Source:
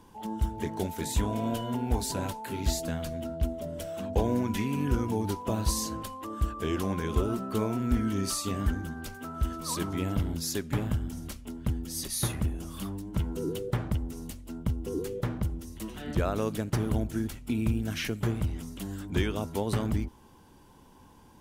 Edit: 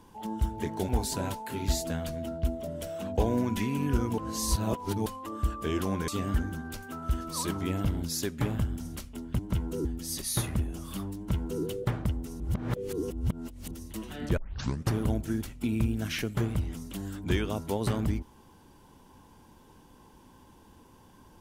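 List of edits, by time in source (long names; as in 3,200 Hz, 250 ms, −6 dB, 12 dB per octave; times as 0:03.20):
0:00.89–0:01.87: remove
0:05.16–0:06.04: reverse
0:07.06–0:08.40: remove
0:13.03–0:13.49: duplicate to 0:11.71
0:14.26–0:15.57: reverse
0:16.23: tape start 0.55 s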